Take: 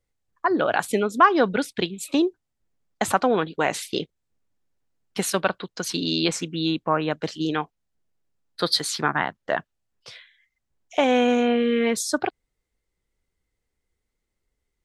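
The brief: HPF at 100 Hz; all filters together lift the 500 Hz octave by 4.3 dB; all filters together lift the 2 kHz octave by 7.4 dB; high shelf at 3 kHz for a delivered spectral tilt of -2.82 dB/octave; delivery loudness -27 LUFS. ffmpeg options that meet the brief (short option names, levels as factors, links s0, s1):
-af "highpass=100,equalizer=f=500:t=o:g=4.5,equalizer=f=2000:t=o:g=8,highshelf=f=3000:g=5,volume=0.422"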